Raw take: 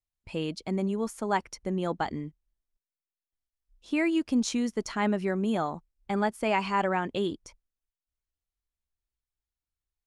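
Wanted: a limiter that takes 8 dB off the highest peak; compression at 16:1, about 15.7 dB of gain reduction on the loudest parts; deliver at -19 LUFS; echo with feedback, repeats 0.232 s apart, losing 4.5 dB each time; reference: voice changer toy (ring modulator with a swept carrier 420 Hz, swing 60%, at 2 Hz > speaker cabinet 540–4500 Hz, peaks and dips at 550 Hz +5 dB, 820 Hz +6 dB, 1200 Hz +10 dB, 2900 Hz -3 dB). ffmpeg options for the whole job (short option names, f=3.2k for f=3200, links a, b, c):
-af "acompressor=threshold=-37dB:ratio=16,alimiter=level_in=9.5dB:limit=-24dB:level=0:latency=1,volume=-9.5dB,aecho=1:1:232|464|696|928|1160|1392|1624|1856|2088:0.596|0.357|0.214|0.129|0.0772|0.0463|0.0278|0.0167|0.01,aeval=exprs='val(0)*sin(2*PI*420*n/s+420*0.6/2*sin(2*PI*2*n/s))':c=same,highpass=540,equalizer=f=550:t=q:w=4:g=5,equalizer=f=820:t=q:w=4:g=6,equalizer=f=1.2k:t=q:w=4:g=10,equalizer=f=2.9k:t=q:w=4:g=-3,lowpass=f=4.5k:w=0.5412,lowpass=f=4.5k:w=1.3066,volume=24.5dB"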